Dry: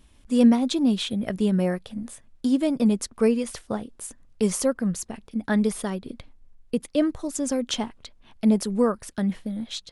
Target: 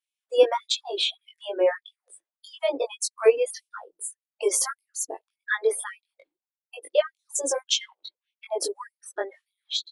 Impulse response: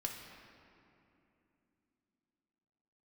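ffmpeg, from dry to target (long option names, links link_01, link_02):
-filter_complex "[0:a]afftdn=noise_reduction=31:noise_floor=-36,asubboost=boost=3.5:cutoff=64,asplit=2[link_01][link_02];[link_02]adelay=20,volume=-2dB[link_03];[link_01][link_03]amix=inputs=2:normalize=0,afftfilt=real='re*gte(b*sr/1024,290*pow(2200/290,0.5+0.5*sin(2*PI*1.7*pts/sr)))':imag='im*gte(b*sr/1024,290*pow(2200/290,0.5+0.5*sin(2*PI*1.7*pts/sr)))':win_size=1024:overlap=0.75,volume=4.5dB"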